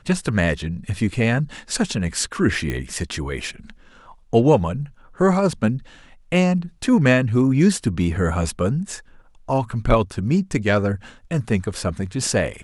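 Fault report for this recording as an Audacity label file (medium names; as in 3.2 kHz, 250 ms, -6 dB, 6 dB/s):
2.700000	2.700000	pop -13 dBFS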